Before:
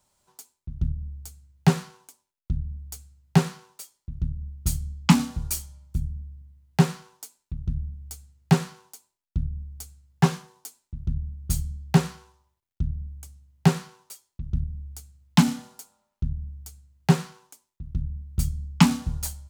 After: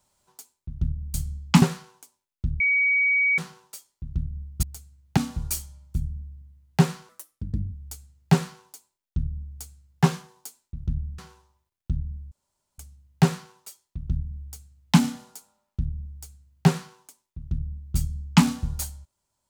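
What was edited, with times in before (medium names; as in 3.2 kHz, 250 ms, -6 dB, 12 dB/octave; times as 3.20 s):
1.14–1.68 s: swap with 4.69–5.17 s
2.66–3.44 s: bleep 2.26 kHz -18 dBFS
7.09–7.92 s: speed 131%
11.38–12.09 s: delete
13.22 s: insert room tone 0.47 s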